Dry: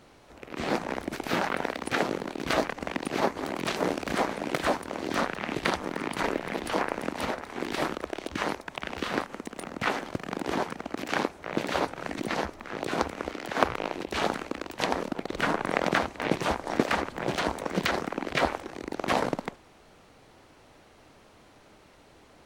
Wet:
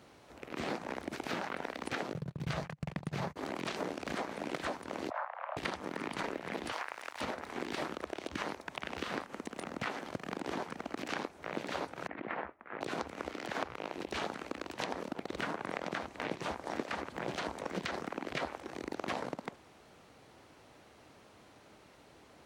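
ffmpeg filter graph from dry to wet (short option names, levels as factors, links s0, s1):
-filter_complex "[0:a]asettb=1/sr,asplit=3[s0][s1][s2];[s0]atrim=end=2.134[s3];[s1]atrim=start=2.13:end=3.36,asetpts=PTS-STARTPTS,afade=t=in:d=0.004:c=qsin,afade=t=out:st=1.226:d=0.004:c=qsin,agate=range=0.0224:threshold=0.02:ratio=16:release=100:detection=peak,lowshelf=f=200:t=q:w=3:g=10.5[s4];[s2]atrim=start=3.356[s5];[s3][s4]acrossfade=d=0.004:c1=hsin:c2=qsin[s6];[s6][s5]acrossfade=d=0.004:c1=qsin:c2=hsin,asettb=1/sr,asplit=3[s7][s8][s9];[s7]atrim=end=5.104[s10];[s8]atrim=start=5.1:end=5.57,asetpts=PTS-STARTPTS,afade=t=in:d=0.004:c=qsin,afade=t=out:st=0.466:d=0.004:c=qsin,asuperpass=centerf=550:order=4:qfactor=0.72,afreqshift=330[s11];[s9]atrim=start=5.566[s12];[s10][s11]acrossfade=d=0.004:c1=hsin:c2=qsin[s13];[s13][s12]acrossfade=d=0.004:c1=qsin:c2=hsin,asettb=1/sr,asplit=3[s14][s15][s16];[s14]atrim=end=6.724[s17];[s15]atrim=start=6.72:end=7.21,asetpts=PTS-STARTPTS,afade=t=in:d=0.004:c=qsin,afade=t=out:st=0.486:d=0.004:c=qsin,highpass=1000,aeval=exprs='sgn(val(0))*max(abs(val(0))-0.00335,0)':c=same[s18];[s16]atrim=start=7.206[s19];[s17][s18]acrossfade=d=0.004:c1=hsin:c2=qsin[s20];[s20][s19]acrossfade=d=0.004:c1=qsin:c2=hsin,asettb=1/sr,asplit=3[s21][s22][s23];[s21]atrim=end=12.074[s24];[s22]atrim=start=12.07:end=12.81,asetpts=PTS-STARTPTS,afade=t=in:d=0.004:c=qsin,afade=t=out:st=0.736:d=0.004:c=qsin,agate=range=0.0224:threshold=0.0126:ratio=3:release=100:detection=peak,lowpass=f=2200:w=0.5412,lowpass=f=2200:w=1.3066,lowshelf=f=390:g=-11[s25];[s23]atrim=start=12.806[s26];[s24][s25]acrossfade=d=0.004:c1=hsin:c2=qsin[s27];[s27][s26]acrossfade=d=0.004:c1=qsin:c2=hsin,acrossover=split=9300[s28][s29];[s29]acompressor=threshold=0.00126:ratio=4:attack=1:release=60[s30];[s28][s30]amix=inputs=2:normalize=0,highpass=65,acompressor=threshold=0.0282:ratio=5,volume=0.708"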